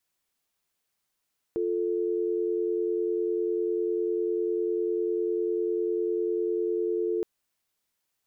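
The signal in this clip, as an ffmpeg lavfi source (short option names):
-f lavfi -i "aevalsrc='0.0422*(sin(2*PI*350*t)+sin(2*PI*440*t))':d=5.67:s=44100"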